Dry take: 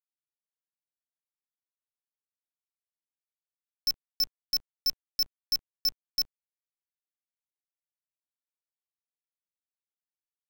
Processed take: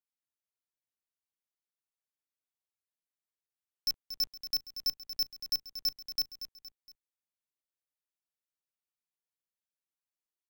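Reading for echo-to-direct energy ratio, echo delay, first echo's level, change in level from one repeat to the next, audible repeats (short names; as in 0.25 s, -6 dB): -10.5 dB, 0.233 s, -11.5 dB, -6.5 dB, 3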